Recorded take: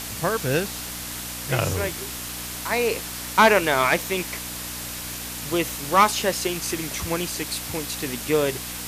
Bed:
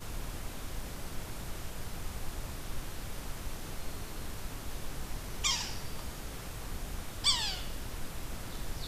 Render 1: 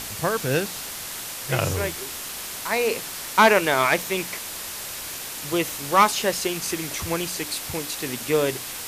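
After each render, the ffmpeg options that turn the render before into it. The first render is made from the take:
-af "bandreject=f=60:t=h:w=4,bandreject=f=120:t=h:w=4,bandreject=f=180:t=h:w=4,bandreject=f=240:t=h:w=4,bandreject=f=300:t=h:w=4"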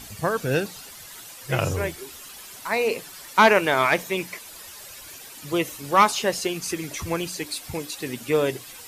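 -af "afftdn=nr=12:nf=-34"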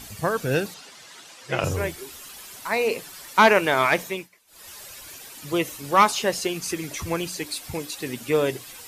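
-filter_complex "[0:a]asettb=1/sr,asplit=3[a][b][c];[a]atrim=end=0.744[d];[b]atrim=start=0.74:end=1.64,asetpts=PTS-STARTPTS,afade=t=in:d=0.004:c=qsin,afade=t=out:st=0.896:d=0.004:c=qsin,highpass=190,lowpass=6.4k[e];[c]atrim=start=1.636[f];[d][e]acrossfade=d=0.004:c1=hsin:c2=qsin[g];[g][f]acrossfade=d=0.004:c1=qsin:c2=hsin,asplit=3[h][i][j];[h]atrim=end=4.29,asetpts=PTS-STARTPTS,afade=t=out:st=4.05:d=0.24:silence=0.0841395[k];[i]atrim=start=4.29:end=4.47,asetpts=PTS-STARTPTS,volume=-21.5dB[l];[j]atrim=start=4.47,asetpts=PTS-STARTPTS,afade=t=in:d=0.24:silence=0.0841395[m];[k][l][m]concat=n=3:v=0:a=1"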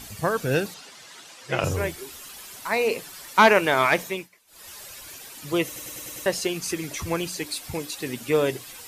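-filter_complex "[0:a]asplit=7[a][b][c][d][e][f][g];[a]atrim=end=5.762[h];[b]atrim=start=5.658:end=5.762[i];[c]atrim=start=5.658:end=5.762[j];[d]atrim=start=5.658:end=5.762[k];[e]atrim=start=5.658:end=5.762[l];[f]atrim=start=5.658:end=5.762[m];[g]atrim=start=6.258[n];[h][i]acrossfade=d=0.004:c1=hsin:c2=hsin[o];[o][j]acrossfade=d=0.004:c1=hsin:c2=hsin[p];[p][k]acrossfade=d=0.004:c1=hsin:c2=hsin[q];[q][l]acrossfade=d=0.004:c1=hsin:c2=hsin[r];[r][m]acrossfade=d=0.004:c1=hsin:c2=hsin[s];[s][n]acrossfade=d=0.004:c1=hsin:c2=hsin"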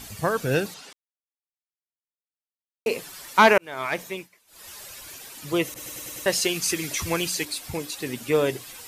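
-filter_complex "[0:a]asettb=1/sr,asplit=3[a][b][c];[a]atrim=end=5.744[d];[b]atrim=start=5.74:end=7.45,asetpts=PTS-STARTPTS,afade=t=in:d=0.004:c=qsin,afade=t=out:st=1.706:d=0.004:c=qsin,adynamicequalizer=threshold=0.00794:dfrequency=1600:dqfactor=0.7:tfrequency=1600:tqfactor=0.7:attack=5:release=100:ratio=0.375:range=3:mode=boostabove:tftype=highshelf[e];[c]atrim=start=7.446[f];[d][e]acrossfade=d=0.004:c1=hsin:c2=qsin[g];[g][f]acrossfade=d=0.004:c1=qsin:c2=hsin,asplit=4[h][i][j][k];[h]atrim=end=0.93,asetpts=PTS-STARTPTS,afade=t=out:st=0.926:d=0.004:c=hsin[l];[i]atrim=start=0.93:end=2.86,asetpts=PTS-STARTPTS,volume=0[m];[j]atrim=start=2.86:end=3.58,asetpts=PTS-STARTPTS,afade=t=in:d=0.004:c=hsin,afade=t=out:st=0.716:d=0.004:c=hsin[n];[k]atrim=start=3.58,asetpts=PTS-STARTPTS,afade=t=in:d=1.13:c=qsin[o];[l][m][n][o]concat=n=4:v=0:a=1"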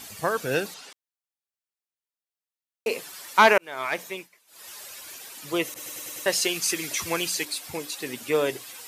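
-af "highpass=f=350:p=1"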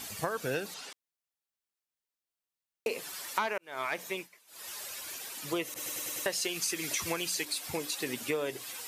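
-af "acompressor=threshold=-29dB:ratio=8"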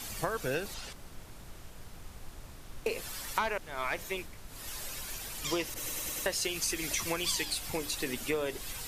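-filter_complex "[1:a]volume=-8dB[a];[0:a][a]amix=inputs=2:normalize=0"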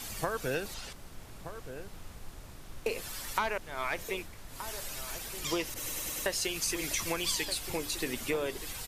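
-filter_complex "[0:a]asplit=2[a][b];[b]adelay=1224,volume=-10dB,highshelf=f=4k:g=-27.6[c];[a][c]amix=inputs=2:normalize=0"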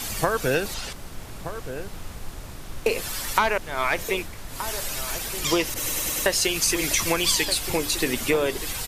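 -af "volume=10dB"

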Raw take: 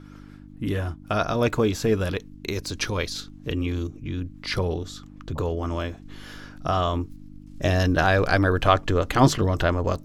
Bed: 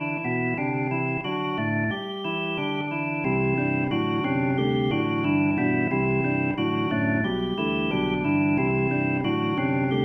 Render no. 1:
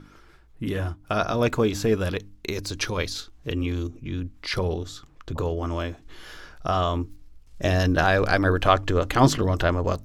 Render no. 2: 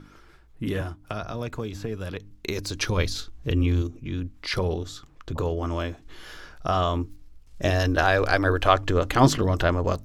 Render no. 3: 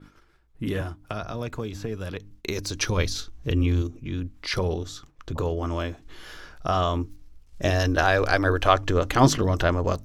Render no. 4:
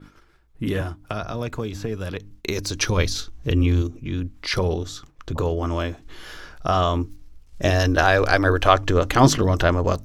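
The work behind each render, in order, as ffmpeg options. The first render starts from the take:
-af "bandreject=f=50:t=h:w=4,bandreject=f=100:t=h:w=4,bandreject=f=150:t=h:w=4,bandreject=f=200:t=h:w=4,bandreject=f=250:t=h:w=4,bandreject=f=300:t=h:w=4"
-filter_complex "[0:a]asettb=1/sr,asplit=3[a][b][c];[a]atrim=end=0.814[d];[b]atrim=start=0.81:end=2.31,asetpts=PTS-STARTPTS,afade=t=in:d=0.004:c=qsin,afade=t=out:st=1.496:d=0.004:c=qsin,acrossover=split=140|3400[e][f][g];[e]acompressor=threshold=-35dB:ratio=4[h];[f]acompressor=threshold=-32dB:ratio=4[i];[g]acompressor=threshold=-51dB:ratio=4[j];[h][i][j]amix=inputs=3:normalize=0[k];[c]atrim=start=2.306[l];[d][k]acrossfade=d=0.004:c1=hsin:c2=qsin[m];[m][l]acrossfade=d=0.004:c1=qsin:c2=hsin,asettb=1/sr,asplit=3[n][o][p];[n]atrim=end=2.894[q];[o]atrim=start=2.89:end=3.82,asetpts=PTS-STARTPTS,afade=t=in:d=0.004:c=qsin,afade=t=out:st=0.926:d=0.004:c=qsin,lowshelf=f=170:g=8.5[r];[p]atrim=start=3.816[s];[q][r]acrossfade=d=0.004:c1=hsin:c2=qsin[t];[t][s]acrossfade=d=0.004:c1=qsin:c2=hsin,asettb=1/sr,asplit=3[u][v][w];[u]atrim=end=7.704[x];[v]atrim=start=7.7:end=8.81,asetpts=PTS-STARTPTS,afade=t=in:d=0.004:c=qsin,afade=t=out:st=1.106:d=0.004:c=qsin,equalizer=f=170:w=2.2:g=-11.5[y];[w]atrim=start=8.806[z];[x][y]acrossfade=d=0.004:c1=hsin:c2=qsin[aa];[aa][z]acrossfade=d=0.004:c1=qsin:c2=hsin"
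-af "agate=range=-9dB:threshold=-49dB:ratio=16:detection=peak,adynamicequalizer=threshold=0.002:dfrequency=5900:dqfactor=6.6:tfrequency=5900:tqfactor=6.6:attack=5:release=100:ratio=0.375:range=2.5:mode=boostabove:tftype=bell"
-af "volume=3.5dB,alimiter=limit=-1dB:level=0:latency=1"

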